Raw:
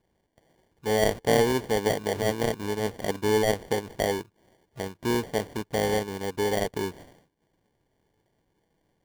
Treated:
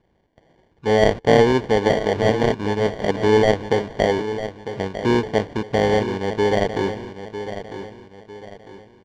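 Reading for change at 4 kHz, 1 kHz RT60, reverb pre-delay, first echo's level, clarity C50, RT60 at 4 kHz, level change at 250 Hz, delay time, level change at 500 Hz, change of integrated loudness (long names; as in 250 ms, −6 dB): +4.5 dB, no reverb audible, no reverb audible, −11.0 dB, no reverb audible, no reverb audible, +8.0 dB, 951 ms, +8.0 dB, +7.0 dB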